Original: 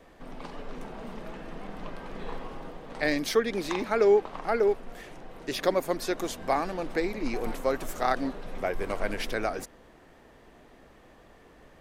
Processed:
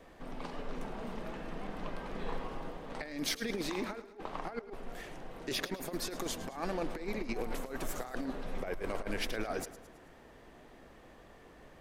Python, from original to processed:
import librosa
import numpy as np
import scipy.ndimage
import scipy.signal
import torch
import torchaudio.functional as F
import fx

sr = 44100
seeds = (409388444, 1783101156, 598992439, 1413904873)

y = fx.over_compress(x, sr, threshold_db=-31.0, ratio=-0.5)
y = fx.echo_feedback(y, sr, ms=108, feedback_pct=48, wet_db=-15.0)
y = y * librosa.db_to_amplitude(-5.0)